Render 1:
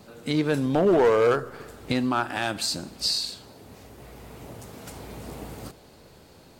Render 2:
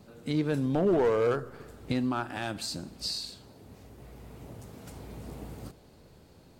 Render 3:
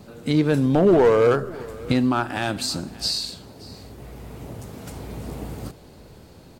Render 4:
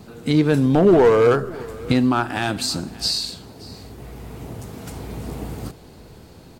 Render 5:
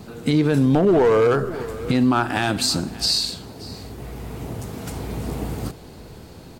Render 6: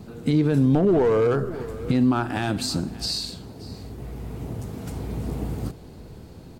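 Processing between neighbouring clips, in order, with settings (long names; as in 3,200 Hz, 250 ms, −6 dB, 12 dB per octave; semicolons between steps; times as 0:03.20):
low-shelf EQ 350 Hz +7.5 dB; level −8.5 dB
single-tap delay 577 ms −21.5 dB; level +9 dB
notch filter 570 Hz, Q 12; level +2.5 dB
brickwall limiter −12.5 dBFS, peak gain reduction 7.5 dB; level +3 dB
low-shelf EQ 490 Hz +7.5 dB; level −7.5 dB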